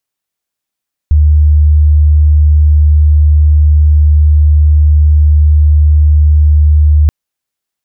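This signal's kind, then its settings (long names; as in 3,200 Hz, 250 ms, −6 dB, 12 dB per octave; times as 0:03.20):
tone sine 75.2 Hz −3 dBFS 5.98 s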